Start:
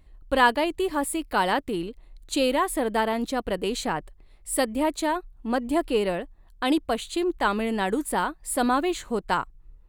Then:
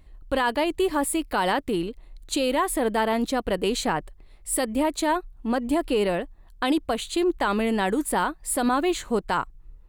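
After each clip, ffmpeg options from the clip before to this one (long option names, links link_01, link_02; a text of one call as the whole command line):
ffmpeg -i in.wav -af "alimiter=limit=-17dB:level=0:latency=1:release=63,volume=3dB" out.wav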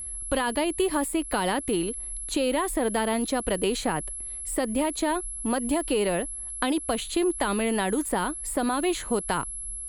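ffmpeg -i in.wav -filter_complex "[0:a]aeval=exprs='val(0)+0.0158*sin(2*PI*11000*n/s)':channel_layout=same,acrossover=split=400|2200[link_01][link_02][link_03];[link_01]acompressor=threshold=-31dB:ratio=4[link_04];[link_02]acompressor=threshold=-30dB:ratio=4[link_05];[link_03]acompressor=threshold=-36dB:ratio=4[link_06];[link_04][link_05][link_06]amix=inputs=3:normalize=0,volume=3dB" out.wav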